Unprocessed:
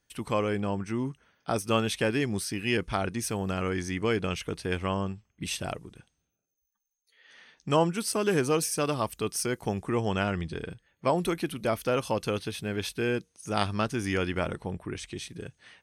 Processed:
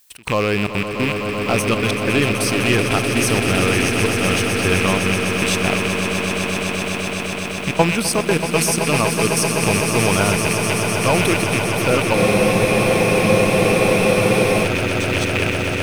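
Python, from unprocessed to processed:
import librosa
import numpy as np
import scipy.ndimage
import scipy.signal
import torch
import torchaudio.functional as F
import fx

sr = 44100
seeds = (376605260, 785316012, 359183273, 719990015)

p1 = fx.rattle_buzz(x, sr, strikes_db=-41.0, level_db=-20.0)
p2 = fx.leveller(p1, sr, passes=2)
p3 = fx.level_steps(p2, sr, step_db=16)
p4 = p2 + F.gain(torch.from_numpy(p3), -0.5).numpy()
p5 = fx.dmg_noise_colour(p4, sr, seeds[0], colour='blue', level_db=-55.0)
p6 = fx.step_gate(p5, sr, bpm=181, pattern='xx.xxxxx.x..x', floor_db=-24.0, edge_ms=4.5)
p7 = p6 + fx.echo_swell(p6, sr, ms=127, loudest=8, wet_db=-9.5, dry=0)
y = fx.spec_freeze(p7, sr, seeds[1], at_s=12.17, hold_s=2.48)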